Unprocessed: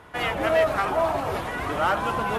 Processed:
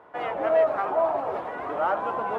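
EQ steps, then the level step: high-pass 310 Hz 6 dB/octave; low-pass 1.3 kHz 6 dB/octave; peaking EQ 650 Hz +10.5 dB 2.4 oct; -8.0 dB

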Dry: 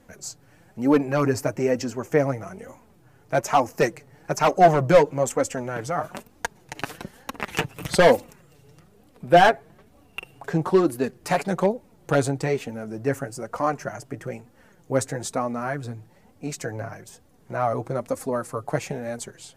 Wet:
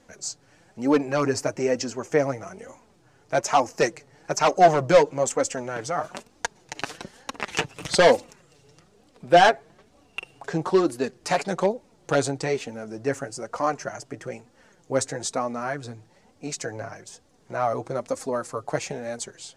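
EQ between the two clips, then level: distance through air 110 m; tone controls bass -6 dB, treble +14 dB; 0.0 dB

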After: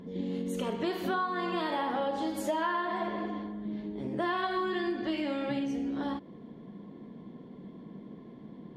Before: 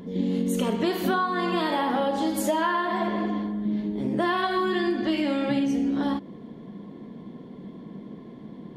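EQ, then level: treble shelf 6.7 kHz -8.5 dB; dynamic bell 220 Hz, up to -5 dB, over -38 dBFS, Q 2; -5.5 dB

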